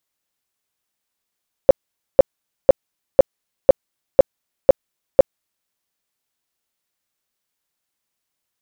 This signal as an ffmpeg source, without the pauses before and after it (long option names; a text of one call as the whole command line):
ffmpeg -f lavfi -i "aevalsrc='0.794*sin(2*PI*540*mod(t,0.5))*lt(mod(t,0.5),9/540)':duration=4:sample_rate=44100" out.wav